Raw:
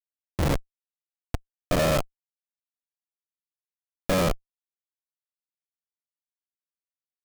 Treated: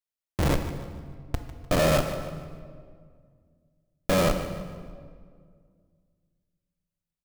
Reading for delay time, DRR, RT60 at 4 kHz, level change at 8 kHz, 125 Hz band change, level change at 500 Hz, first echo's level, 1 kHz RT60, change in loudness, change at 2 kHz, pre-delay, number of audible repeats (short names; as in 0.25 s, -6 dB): 0.15 s, 6.5 dB, 1.3 s, +0.5 dB, +1.0 dB, +1.5 dB, -14.0 dB, 1.8 s, -1.5 dB, +1.0 dB, 9 ms, 2